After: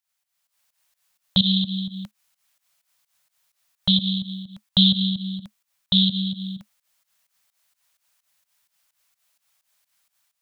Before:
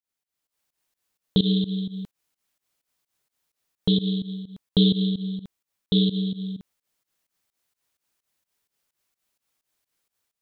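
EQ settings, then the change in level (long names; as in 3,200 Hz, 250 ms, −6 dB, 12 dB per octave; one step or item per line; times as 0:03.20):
Chebyshev band-stop filter 210–550 Hz, order 4
tilt shelving filter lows −5 dB, about 650 Hz
+4.5 dB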